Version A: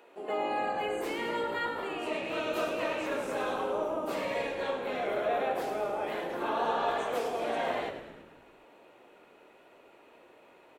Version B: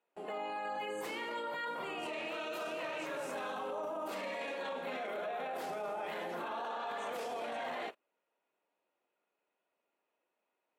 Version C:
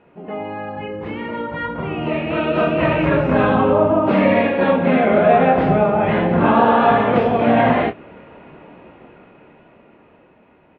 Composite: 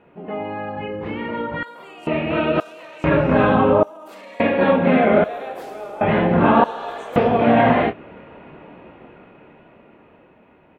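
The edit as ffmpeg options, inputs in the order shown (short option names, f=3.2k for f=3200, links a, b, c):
-filter_complex "[1:a]asplit=3[a][b][c];[0:a]asplit=2[d][e];[2:a]asplit=6[f][g][h][i][j][k];[f]atrim=end=1.632[l];[a]atrim=start=1.628:end=2.072[m];[g]atrim=start=2.068:end=2.602[n];[b]atrim=start=2.598:end=3.042[o];[h]atrim=start=3.038:end=3.832[p];[c]atrim=start=3.828:end=4.402[q];[i]atrim=start=4.398:end=5.242[r];[d]atrim=start=5.238:end=6.012[s];[j]atrim=start=6.008:end=6.642[t];[e]atrim=start=6.638:end=7.162[u];[k]atrim=start=7.158[v];[l][m]acrossfade=d=0.004:c1=hsin:c2=hsin[w];[w][n]acrossfade=d=0.004:c1=hsin:c2=hsin[x];[x][o]acrossfade=d=0.004:c1=hsin:c2=hsin[y];[y][p]acrossfade=d=0.004:c1=hsin:c2=hsin[z];[z][q]acrossfade=d=0.004:c1=hsin:c2=hsin[aa];[aa][r]acrossfade=d=0.004:c1=hsin:c2=hsin[ab];[ab][s]acrossfade=d=0.004:c1=hsin:c2=hsin[ac];[ac][t]acrossfade=d=0.004:c1=hsin:c2=hsin[ad];[ad][u]acrossfade=d=0.004:c1=hsin:c2=hsin[ae];[ae][v]acrossfade=d=0.004:c1=hsin:c2=hsin"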